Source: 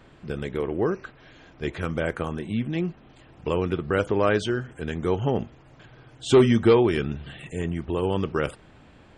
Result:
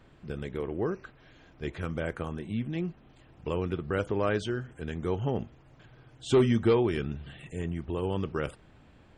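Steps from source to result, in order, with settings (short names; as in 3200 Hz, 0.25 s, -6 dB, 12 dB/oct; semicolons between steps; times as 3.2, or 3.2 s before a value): low shelf 160 Hz +4.5 dB; gain -7 dB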